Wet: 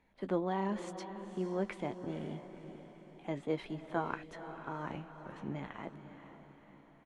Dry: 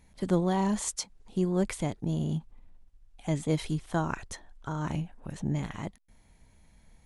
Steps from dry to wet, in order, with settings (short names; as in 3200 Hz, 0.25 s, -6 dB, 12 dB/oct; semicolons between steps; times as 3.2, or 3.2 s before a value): three-band isolator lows -14 dB, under 240 Hz, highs -22 dB, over 3200 Hz; doubler 15 ms -11 dB; diffused feedback echo 0.501 s, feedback 50%, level -10.5 dB; gain -4 dB